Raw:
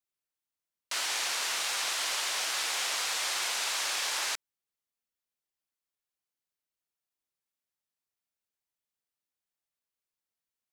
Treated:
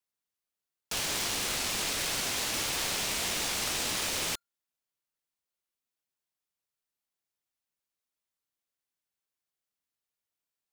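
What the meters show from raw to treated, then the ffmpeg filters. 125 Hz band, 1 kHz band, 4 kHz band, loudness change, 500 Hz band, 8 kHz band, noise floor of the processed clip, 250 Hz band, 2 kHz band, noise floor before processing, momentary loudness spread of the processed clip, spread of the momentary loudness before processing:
no reading, -1.5 dB, -1.0 dB, 0.0 dB, +5.5 dB, +0.5 dB, under -85 dBFS, +15.5 dB, -2.0 dB, under -85 dBFS, 3 LU, 3 LU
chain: -af "afreqshift=-16,aeval=exprs='val(0)*sgn(sin(2*PI*1400*n/s))':c=same"

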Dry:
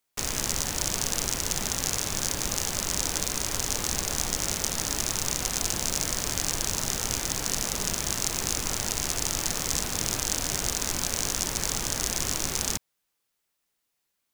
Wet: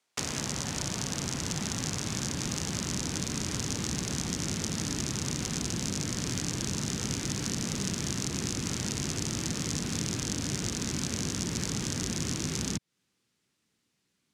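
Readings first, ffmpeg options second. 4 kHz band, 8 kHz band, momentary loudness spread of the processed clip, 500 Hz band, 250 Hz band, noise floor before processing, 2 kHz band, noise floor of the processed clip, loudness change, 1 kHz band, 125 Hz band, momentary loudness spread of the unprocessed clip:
-5.0 dB, -6.5 dB, 1 LU, -3.0 dB, +5.0 dB, -79 dBFS, -4.5 dB, -78 dBFS, -5.0 dB, -6.5 dB, +3.5 dB, 1 LU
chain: -filter_complex "[0:a]asubboost=boost=8.5:cutoff=230,highpass=160,lowpass=7300,acrossover=split=300|1400[s0][s1][s2];[s0]acompressor=threshold=0.01:ratio=4[s3];[s1]acompressor=threshold=0.00398:ratio=4[s4];[s2]acompressor=threshold=0.0158:ratio=4[s5];[s3][s4][s5]amix=inputs=3:normalize=0,volume=1.78"

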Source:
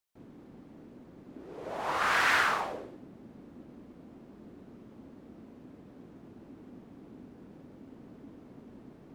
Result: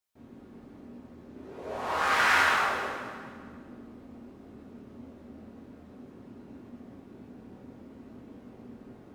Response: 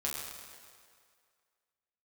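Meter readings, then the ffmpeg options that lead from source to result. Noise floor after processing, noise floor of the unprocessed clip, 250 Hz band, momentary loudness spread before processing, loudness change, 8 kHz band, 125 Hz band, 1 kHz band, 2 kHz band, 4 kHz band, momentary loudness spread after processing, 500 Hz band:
-52 dBFS, -54 dBFS, +2.5 dB, 21 LU, +2.5 dB, +2.5 dB, +2.0 dB, +3.0 dB, +3.0 dB, +2.5 dB, 22 LU, +2.5 dB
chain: -filter_complex "[1:a]atrim=start_sample=2205,asetrate=48510,aresample=44100[s0];[0:a][s0]afir=irnorm=-1:irlink=0"

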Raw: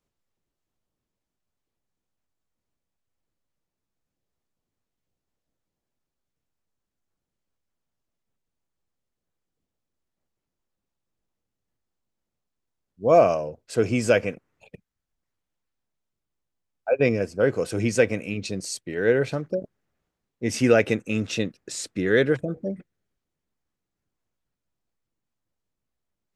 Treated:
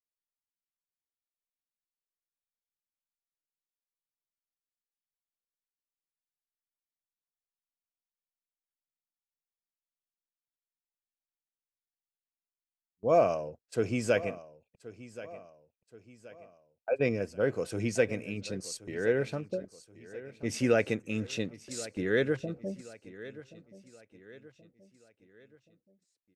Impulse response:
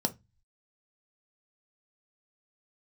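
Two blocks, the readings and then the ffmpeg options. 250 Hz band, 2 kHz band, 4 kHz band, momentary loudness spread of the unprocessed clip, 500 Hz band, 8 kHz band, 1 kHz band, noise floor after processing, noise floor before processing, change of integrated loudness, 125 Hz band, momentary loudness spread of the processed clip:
-7.5 dB, -7.5 dB, -7.5 dB, 12 LU, -7.5 dB, -7.5 dB, -7.5 dB, under -85 dBFS, -85 dBFS, -7.5 dB, -7.5 dB, 19 LU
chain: -af "agate=range=0.0631:threshold=0.0126:ratio=16:detection=peak,aecho=1:1:1077|2154|3231|4308:0.141|0.0622|0.0273|0.012,volume=0.422"

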